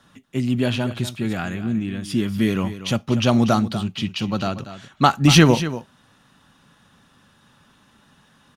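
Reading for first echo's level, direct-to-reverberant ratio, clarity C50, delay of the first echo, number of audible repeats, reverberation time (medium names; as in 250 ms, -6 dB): -13.0 dB, no reverb, no reverb, 239 ms, 1, no reverb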